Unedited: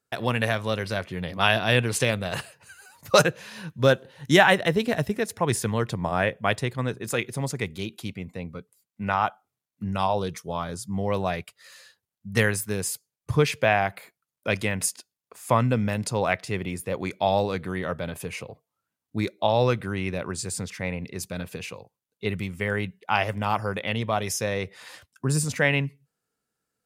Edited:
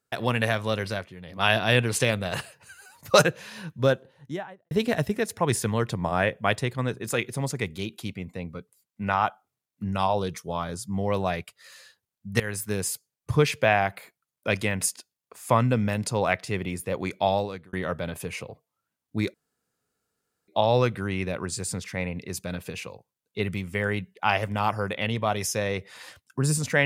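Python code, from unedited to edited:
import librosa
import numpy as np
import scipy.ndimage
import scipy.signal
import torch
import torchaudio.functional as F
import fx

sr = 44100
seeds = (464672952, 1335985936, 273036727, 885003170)

y = fx.studio_fade_out(x, sr, start_s=3.49, length_s=1.22)
y = fx.edit(y, sr, fx.fade_down_up(start_s=0.87, length_s=0.65, db=-11.5, fade_s=0.27),
    fx.fade_in_from(start_s=12.4, length_s=0.28, floor_db=-17.5),
    fx.fade_out_span(start_s=17.25, length_s=0.48),
    fx.insert_room_tone(at_s=19.34, length_s=1.14), tone=tone)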